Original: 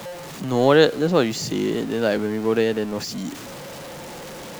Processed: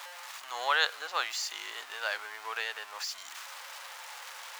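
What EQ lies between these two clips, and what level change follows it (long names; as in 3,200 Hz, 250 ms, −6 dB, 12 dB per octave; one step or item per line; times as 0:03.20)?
high-pass filter 960 Hz 24 dB per octave
high-shelf EQ 4,800 Hz −4.5 dB
−2.5 dB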